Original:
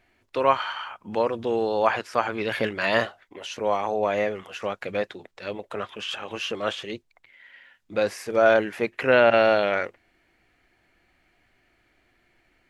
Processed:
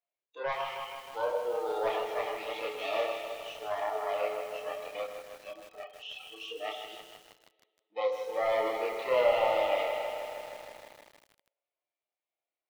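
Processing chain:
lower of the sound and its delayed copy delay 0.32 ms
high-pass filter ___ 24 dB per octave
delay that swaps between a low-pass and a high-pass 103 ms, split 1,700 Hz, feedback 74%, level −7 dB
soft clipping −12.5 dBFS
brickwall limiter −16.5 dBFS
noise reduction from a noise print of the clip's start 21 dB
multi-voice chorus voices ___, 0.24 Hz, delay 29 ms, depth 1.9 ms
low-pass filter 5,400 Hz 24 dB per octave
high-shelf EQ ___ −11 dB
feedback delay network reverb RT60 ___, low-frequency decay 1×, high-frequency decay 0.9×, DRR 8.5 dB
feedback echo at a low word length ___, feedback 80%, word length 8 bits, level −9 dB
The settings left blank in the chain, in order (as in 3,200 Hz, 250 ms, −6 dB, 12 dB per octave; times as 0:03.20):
500 Hz, 6, 2,200 Hz, 1.5 s, 157 ms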